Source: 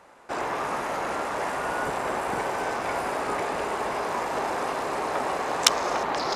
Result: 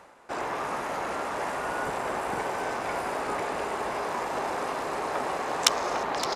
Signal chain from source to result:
reversed playback
upward compression, threshold −37 dBFS
reversed playback
single-tap delay 567 ms −13.5 dB
level −2.5 dB

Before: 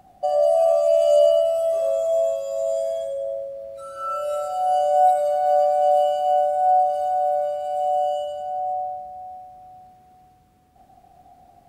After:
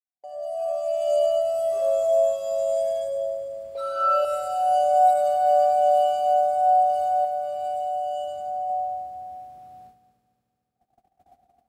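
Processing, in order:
fade in at the beginning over 2.02 s
high-pass filter 42 Hz
mains-hum notches 50/100/150/200 Hz
noise gate −48 dBFS, range −31 dB
0:03.75–0:04.25: octave-band graphic EQ 125/500/1,000/4,000/8,000 Hz −11/+5/+11/+11/−7 dB
0:07.24–0:08.70: downward compressor, threshold −24 dBFS, peak gain reduction 6 dB
on a send: echo machine with several playback heads 74 ms, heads first and third, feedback 69%, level −14 dB

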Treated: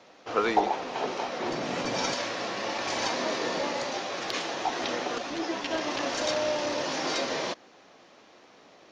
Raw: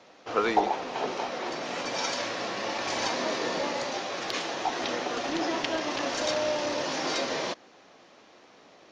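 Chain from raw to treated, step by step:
0:01.40–0:02.14: low-shelf EQ 280 Hz +11.5 dB
0:05.18–0:05.71: string-ensemble chorus

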